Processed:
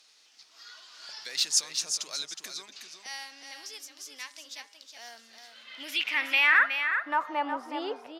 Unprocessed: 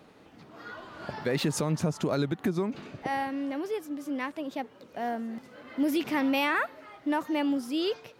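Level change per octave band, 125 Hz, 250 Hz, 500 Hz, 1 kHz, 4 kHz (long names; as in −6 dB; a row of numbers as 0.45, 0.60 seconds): below −35 dB, −16.5 dB, −10.5 dB, 0.0 dB, +7.5 dB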